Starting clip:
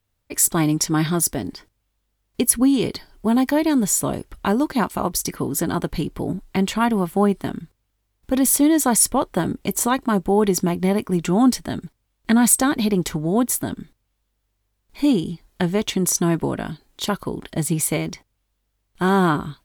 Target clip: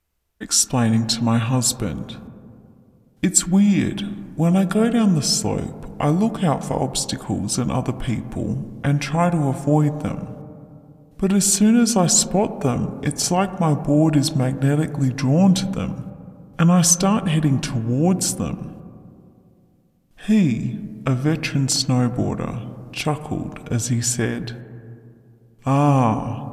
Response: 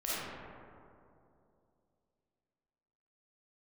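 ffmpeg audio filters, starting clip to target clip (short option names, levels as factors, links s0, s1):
-filter_complex "[0:a]asplit=2[s0][s1];[1:a]atrim=start_sample=2205,asetrate=61740,aresample=44100,lowpass=2600[s2];[s1][s2]afir=irnorm=-1:irlink=0,volume=0.2[s3];[s0][s3]amix=inputs=2:normalize=0,asetrate=32667,aresample=44100"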